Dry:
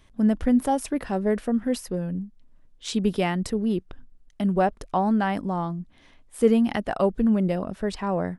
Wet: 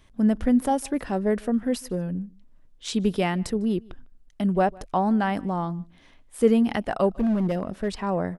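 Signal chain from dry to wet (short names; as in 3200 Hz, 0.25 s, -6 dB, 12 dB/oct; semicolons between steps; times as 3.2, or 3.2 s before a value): 7.1–7.88 hard clip -19.5 dBFS, distortion -22 dB; outdoor echo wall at 26 m, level -25 dB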